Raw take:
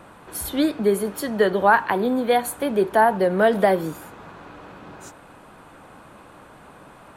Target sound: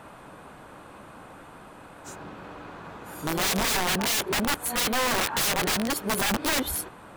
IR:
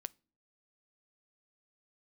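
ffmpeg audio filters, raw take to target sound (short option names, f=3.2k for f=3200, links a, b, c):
-af "areverse,aeval=exprs='(mod(10*val(0)+1,2)-1)/10':c=same"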